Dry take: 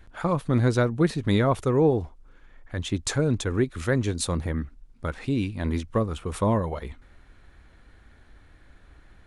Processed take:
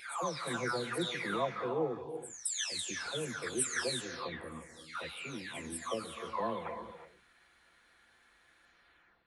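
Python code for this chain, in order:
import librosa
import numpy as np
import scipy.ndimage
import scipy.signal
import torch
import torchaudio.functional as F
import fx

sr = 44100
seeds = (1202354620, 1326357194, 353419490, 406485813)

y = fx.spec_delay(x, sr, highs='early', ms=615)
y = fx.highpass(y, sr, hz=1500.0, slope=6)
y = fx.rev_gated(y, sr, seeds[0], gate_ms=390, shape='rising', drr_db=9.0)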